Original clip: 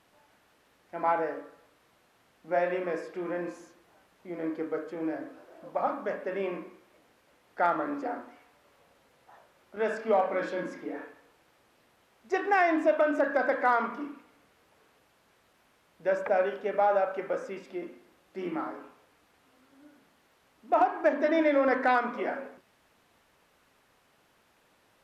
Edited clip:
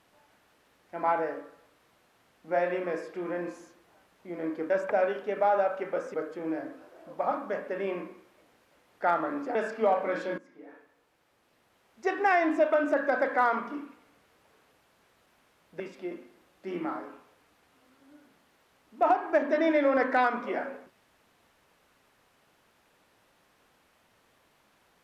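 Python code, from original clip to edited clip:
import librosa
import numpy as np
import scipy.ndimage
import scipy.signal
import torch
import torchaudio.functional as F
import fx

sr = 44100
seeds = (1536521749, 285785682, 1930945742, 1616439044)

y = fx.edit(x, sr, fx.cut(start_s=8.11, length_s=1.71),
    fx.fade_in_from(start_s=10.65, length_s=1.73, floor_db=-18.5),
    fx.move(start_s=16.07, length_s=1.44, to_s=4.7), tone=tone)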